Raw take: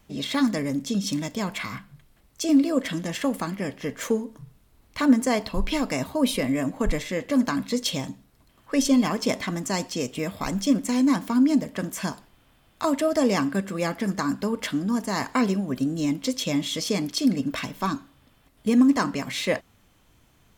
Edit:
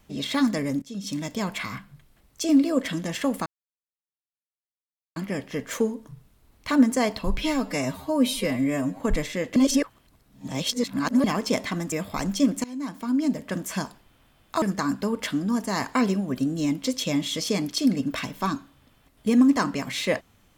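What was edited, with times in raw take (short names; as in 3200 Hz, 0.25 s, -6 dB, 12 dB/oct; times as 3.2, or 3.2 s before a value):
0.82–1.32 fade in, from -18.5 dB
3.46 insert silence 1.70 s
5.68–6.76 stretch 1.5×
7.32–9 reverse
9.68–10.19 cut
10.91–11.84 fade in, from -20 dB
12.89–14.02 cut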